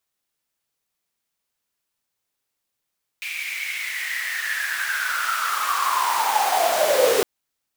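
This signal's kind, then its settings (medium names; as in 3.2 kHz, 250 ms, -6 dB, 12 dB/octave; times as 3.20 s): swept filtered noise pink, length 4.01 s highpass, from 2.4 kHz, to 420 Hz, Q 10, linear, gain ramp +12 dB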